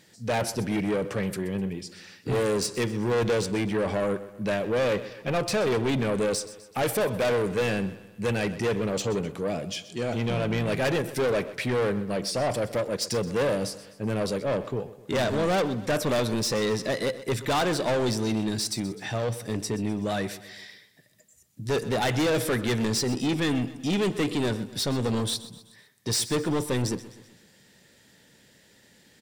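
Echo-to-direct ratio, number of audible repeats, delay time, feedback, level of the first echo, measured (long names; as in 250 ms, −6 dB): −15.0 dB, 4, 127 ms, 49%, −16.0 dB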